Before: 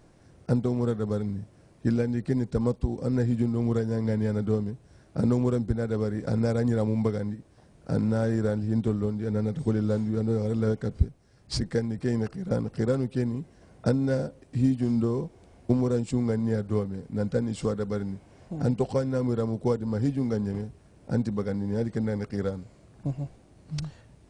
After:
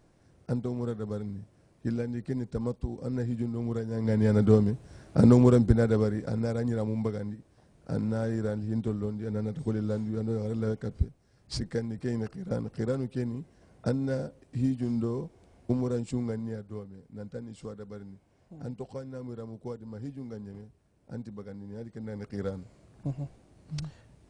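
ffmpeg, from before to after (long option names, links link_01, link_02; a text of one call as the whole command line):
ffmpeg -i in.wav -af "volume=15.5dB,afade=type=in:start_time=3.91:duration=0.52:silence=0.266073,afade=type=out:start_time=5.77:duration=0.53:silence=0.316228,afade=type=out:start_time=16.15:duration=0.51:silence=0.375837,afade=type=in:start_time=21.97:duration=0.59:silence=0.316228" out.wav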